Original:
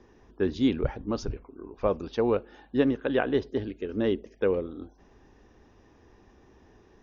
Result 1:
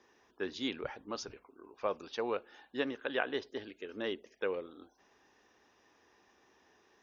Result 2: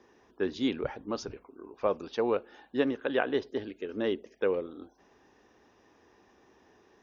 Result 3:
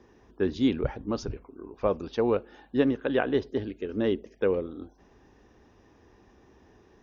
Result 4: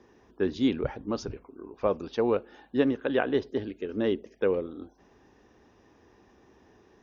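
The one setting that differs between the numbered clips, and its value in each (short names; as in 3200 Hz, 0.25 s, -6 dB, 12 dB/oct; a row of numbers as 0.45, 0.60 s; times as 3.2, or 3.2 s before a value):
HPF, cutoff: 1400, 440, 48, 140 Hz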